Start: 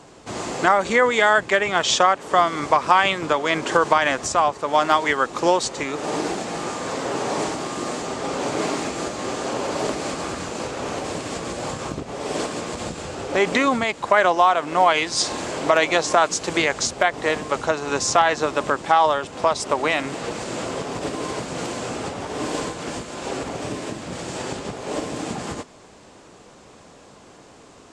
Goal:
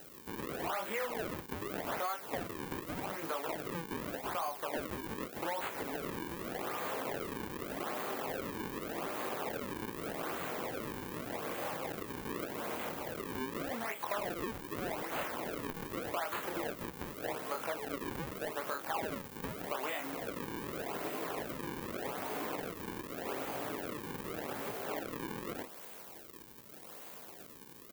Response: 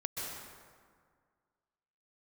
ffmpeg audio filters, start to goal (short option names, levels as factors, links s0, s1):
-filter_complex "[0:a]highshelf=f=8300:g=9.5,asplit=2[s0][s1];[s1]aecho=0:1:36|51:0.237|0.158[s2];[s0][s2]amix=inputs=2:normalize=0,flanger=delay=17.5:depth=7.4:speed=0.89,acrusher=samples=38:mix=1:aa=0.000001:lfo=1:lforange=60.8:lforate=0.84,asoftclip=type=tanh:threshold=0.2,acompressor=threshold=0.0316:ratio=6,aemphasis=mode=production:type=bsi,acrossover=split=2700[s3][s4];[s4]acompressor=threshold=0.0141:ratio=4:attack=1:release=60[s5];[s3][s5]amix=inputs=2:normalize=0,volume=0.668"